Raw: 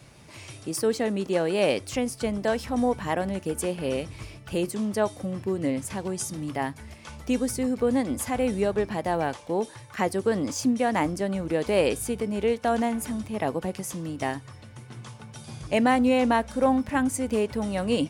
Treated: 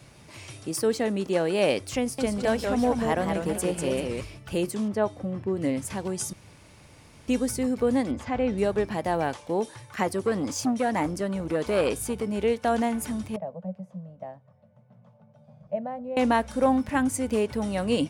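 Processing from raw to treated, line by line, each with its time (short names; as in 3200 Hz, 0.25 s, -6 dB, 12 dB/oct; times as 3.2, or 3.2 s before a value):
1.99–4.21 warbling echo 0.194 s, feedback 34%, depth 163 cents, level -4.5 dB
4.88–5.57 LPF 1800 Hz 6 dB/oct
6.33–7.28 room tone
8.11–8.58 air absorption 170 m
10.03–12.27 core saturation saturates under 670 Hz
13.36–16.17 double band-pass 330 Hz, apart 1.7 oct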